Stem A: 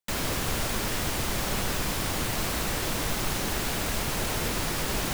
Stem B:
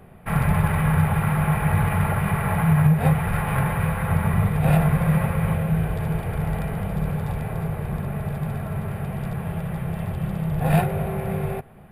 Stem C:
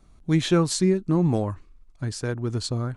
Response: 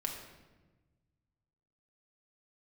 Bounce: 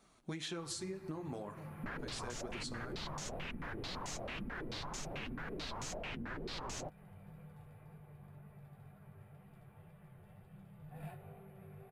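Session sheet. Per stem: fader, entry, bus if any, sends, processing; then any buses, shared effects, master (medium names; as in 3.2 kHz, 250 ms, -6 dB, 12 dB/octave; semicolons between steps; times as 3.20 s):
-2.0 dB, 1.75 s, bus A, no send, step-sequenced low-pass 9.1 Hz 250–6700 Hz
-14.0 dB, 0.30 s, no bus, no send, chord resonator G2 major, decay 0.23 s
+2.0 dB, 0.00 s, bus A, send -15 dB, high-pass 570 Hz 6 dB/octave
bus A: 0.0 dB, compression, threshold -28 dBFS, peak gain reduction 9 dB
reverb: on, RT60 1.2 s, pre-delay 5 ms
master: flange 2 Hz, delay 4 ms, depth 5.4 ms, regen -34%; compression, threshold -40 dBFS, peak gain reduction 12 dB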